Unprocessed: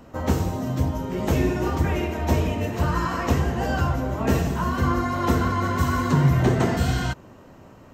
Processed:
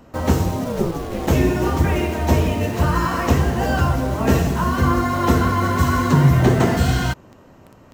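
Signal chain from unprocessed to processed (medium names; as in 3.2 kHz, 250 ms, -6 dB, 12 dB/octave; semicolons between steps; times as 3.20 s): 0.64–1.26 s: ring modulator 400 Hz -> 130 Hz; in parallel at -3 dB: word length cut 6-bit, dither none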